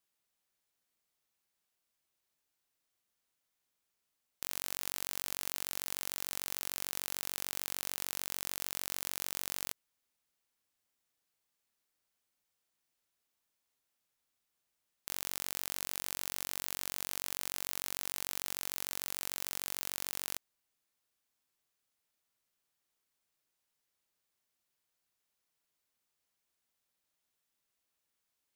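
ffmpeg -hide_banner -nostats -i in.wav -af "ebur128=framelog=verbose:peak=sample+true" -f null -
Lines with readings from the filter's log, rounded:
Integrated loudness:
  I:         -37.2 LUFS
  Threshold: -47.2 LUFS
Loudness range:
  LRA:         8.5 LU
  Threshold: -58.9 LUFS
  LRA low:   -45.4 LUFS
  LRA high:  -36.9 LUFS
Sample peak:
  Peak:      -10.3 dBFS
True peak:
  Peak:      -10.3 dBFS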